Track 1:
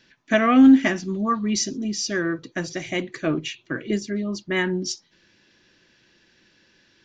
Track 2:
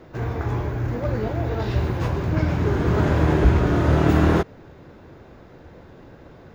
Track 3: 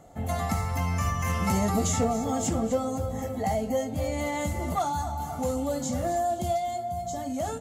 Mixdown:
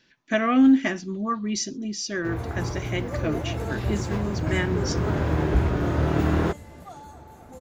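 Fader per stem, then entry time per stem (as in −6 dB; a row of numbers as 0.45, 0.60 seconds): −4.0, −5.0, −15.5 decibels; 0.00, 2.10, 2.10 seconds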